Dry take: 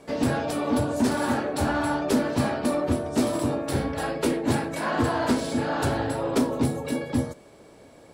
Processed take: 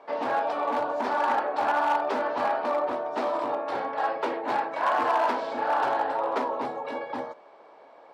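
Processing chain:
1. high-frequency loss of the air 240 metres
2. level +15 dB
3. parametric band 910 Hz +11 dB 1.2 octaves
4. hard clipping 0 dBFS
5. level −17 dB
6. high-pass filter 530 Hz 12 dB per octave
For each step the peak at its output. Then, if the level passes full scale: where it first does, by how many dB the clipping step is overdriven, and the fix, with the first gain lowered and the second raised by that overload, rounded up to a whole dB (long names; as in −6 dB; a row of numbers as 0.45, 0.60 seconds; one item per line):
−13.0, +2.0, +6.5, 0.0, −17.0, −13.5 dBFS
step 2, 6.5 dB
step 2 +8 dB, step 5 −10 dB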